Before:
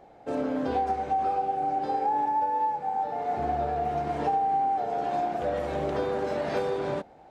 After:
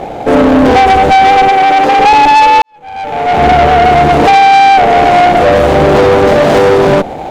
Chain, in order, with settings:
running median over 25 samples
tube saturation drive 32 dB, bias 0.45
0:01.49–0:01.99: low-shelf EQ 180 Hz −10.5 dB
0:02.62–0:03.73: fade in quadratic
boost into a limiter +35 dB
level −1 dB

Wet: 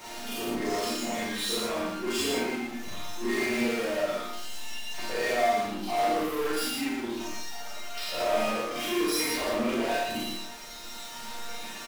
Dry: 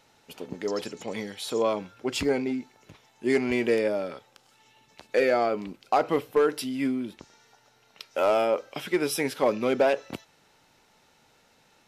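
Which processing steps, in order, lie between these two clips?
every overlapping window played backwards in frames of 108 ms
reverb reduction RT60 1.8 s
mains-hum notches 50/100/150/200/250/300 Hz
in parallel at +2 dB: compressor whose output falls as the input rises −30 dBFS
on the sum: resonators tuned to a chord A#3 sus4, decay 0.25 s
power curve on the samples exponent 0.35
on a send: single-tap delay 115 ms −4 dB
on the sum: four-comb reverb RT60 0.32 s, combs from 29 ms, DRR −3.5 dB
level −2.5 dB

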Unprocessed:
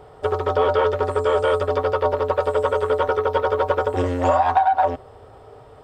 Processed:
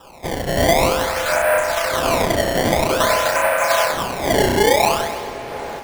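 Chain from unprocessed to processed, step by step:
each half-wave held at its own peak
reverb reduction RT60 1.1 s
in parallel at −0.5 dB: downward compressor, threshold −27 dBFS, peak gain reduction 15 dB
on the sum: single-sideband voice off tune +83 Hz 570–2,400 Hz
flutter between parallel walls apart 5.6 metres, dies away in 1.2 s
sample-and-hold swept by an LFO 20×, swing 160% 0.5 Hz
on a send at −10 dB: convolution reverb RT60 4.2 s, pre-delay 23 ms
0:01.60–0:02.56: on the sum: tube saturation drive 10 dB, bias 0.5
automatic gain control gain up to 11.5 dB
level −5 dB

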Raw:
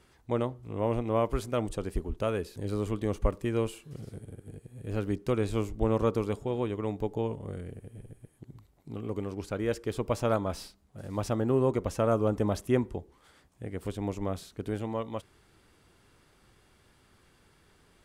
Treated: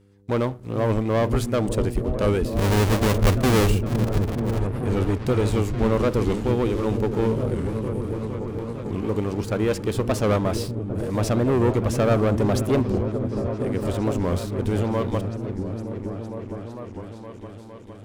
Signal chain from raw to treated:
0:02.52–0:04.60: each half-wave held at its own peak
leveller curve on the samples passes 3
hum with harmonics 100 Hz, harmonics 5, −55 dBFS
echo whose low-pass opens from repeat to repeat 459 ms, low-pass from 200 Hz, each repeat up 1 octave, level −3 dB
wow of a warped record 45 rpm, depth 160 cents
level −1.5 dB

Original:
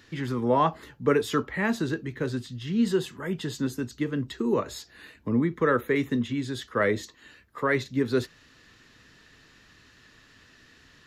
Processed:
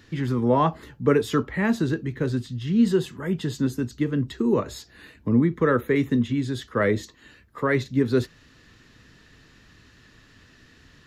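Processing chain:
low-shelf EQ 320 Hz +7.5 dB

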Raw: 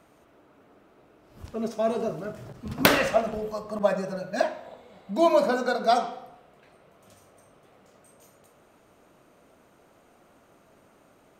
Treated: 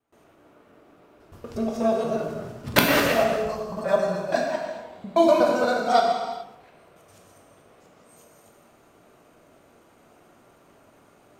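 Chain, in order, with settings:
reversed piece by piece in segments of 120 ms
noise gate with hold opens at −50 dBFS
reverb whose tail is shaped and stops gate 460 ms falling, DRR 0 dB

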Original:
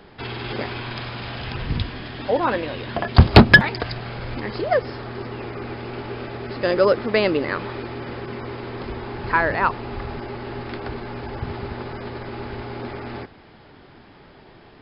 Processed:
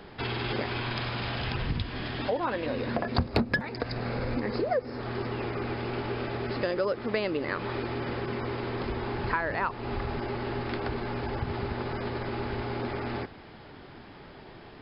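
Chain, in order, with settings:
0:02.66–0:05.01: thirty-one-band graphic EQ 250 Hz +9 dB, 500 Hz +8 dB, 3,150 Hz −9 dB
downward compressor 4 to 1, threshold −27 dBFS, peak gain reduction 20 dB

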